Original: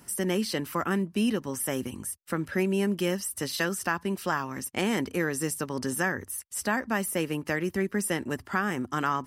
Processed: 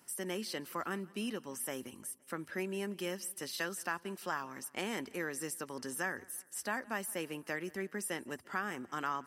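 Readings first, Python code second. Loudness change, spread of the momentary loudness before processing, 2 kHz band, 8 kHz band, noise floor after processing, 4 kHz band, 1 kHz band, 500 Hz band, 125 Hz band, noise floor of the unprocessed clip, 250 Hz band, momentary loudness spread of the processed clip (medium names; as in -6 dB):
-10.0 dB, 4 LU, -8.0 dB, -8.0 dB, -63 dBFS, -8.0 dB, -8.5 dB, -10.5 dB, -15.0 dB, -57 dBFS, -13.0 dB, 4 LU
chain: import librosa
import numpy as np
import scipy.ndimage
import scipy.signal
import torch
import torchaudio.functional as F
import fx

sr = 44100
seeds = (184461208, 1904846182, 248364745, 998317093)

p1 = fx.highpass(x, sr, hz=360.0, slope=6)
p2 = p1 + fx.echo_feedback(p1, sr, ms=172, feedback_pct=55, wet_db=-24, dry=0)
y = p2 * librosa.db_to_amplitude(-8.0)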